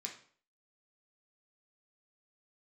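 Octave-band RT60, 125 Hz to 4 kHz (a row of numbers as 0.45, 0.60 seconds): 0.50, 0.50, 0.50, 0.50, 0.45, 0.40 seconds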